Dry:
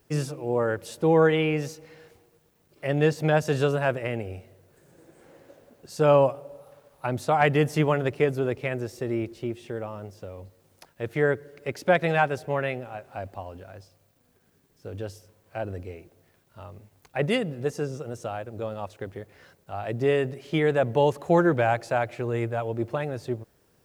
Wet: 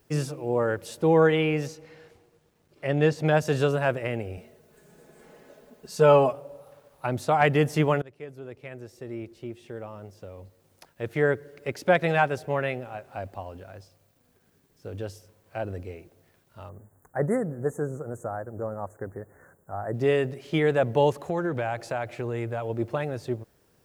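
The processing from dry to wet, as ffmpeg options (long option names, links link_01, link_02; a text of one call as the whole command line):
ffmpeg -i in.wav -filter_complex "[0:a]asettb=1/sr,asplit=3[link_01][link_02][link_03];[link_01]atrim=end=1.674[link_04];[link_02]atrim=start=1.67:end=3.26,asetpts=PTS-STARTPTS,afade=type=in:duration=0.004:curve=qsin,afade=type=out:start_time=1.586:duration=0.004:curve=qsin,highshelf=frequency=11000:gain=-12[link_05];[link_03]atrim=start=3.256[link_06];[link_04][link_05]acrossfade=duration=0.004:curve1=hsin:curve2=qsin[link_07];[link_07][link_06]acrossfade=duration=0.004:curve1=qsin:curve2=hsin,asettb=1/sr,asplit=3[link_08][link_09][link_10];[link_08]atrim=end=4.374[link_11];[link_09]atrim=start=4.37:end=6.33,asetpts=PTS-STARTPTS,afade=type=in:duration=0.004:curve=qsin,afade=type=out:start_time=1.956:duration=0.004:curve=qsin,aecho=1:1:4.7:0.85,atrim=end_sample=86436[link_12];[link_10]atrim=start=6.326[link_13];[link_11][link_12]acrossfade=duration=0.004:curve1=hsin:curve2=qsin[link_14];[link_14][link_13]acrossfade=duration=0.004:curve1=qsin:curve2=hsin,asettb=1/sr,asplit=3[link_15][link_16][link_17];[link_15]atrim=end=16.694[link_18];[link_16]atrim=start=16.69:end=19.94,asetpts=PTS-STARTPTS,afade=type=in:duration=0.004:curve=qsin,afade=type=out:start_time=3.246:duration=0.004:curve=qsin,asuperstop=centerf=3600:order=12:qfactor=0.7[link_19];[link_17]atrim=start=19.936[link_20];[link_18][link_19]acrossfade=duration=0.004:curve1=hsin:curve2=qsin[link_21];[link_21][link_20]acrossfade=duration=0.004:curve1=qsin:curve2=hsin,asettb=1/sr,asplit=3[link_22][link_23][link_24];[link_22]atrim=end=21.134[link_25];[link_23]atrim=start=21.13:end=22.7,asetpts=PTS-STARTPTS,afade=type=in:duration=0.004:curve=qsin,afade=type=out:start_time=1.566:duration=0.004:curve=qsin,acompressor=threshold=-26dB:ratio=3:attack=3.2:release=140:knee=1:detection=peak[link_26];[link_24]atrim=start=22.696[link_27];[link_25][link_26]acrossfade=duration=0.004:curve1=hsin:curve2=qsin[link_28];[link_28][link_27]acrossfade=duration=0.004:curve1=qsin:curve2=hsin,asplit=2[link_29][link_30];[link_29]atrim=end=8.02,asetpts=PTS-STARTPTS,afade=type=out:start_time=8.016:duration=0.004:curve=hsin:silence=0.0707946[link_31];[link_30]atrim=start=8.02,asetpts=PTS-STARTPTS,afade=type=in:duration=3.24:silence=0.0707946[link_32];[link_31][link_32]concat=n=2:v=0:a=1" out.wav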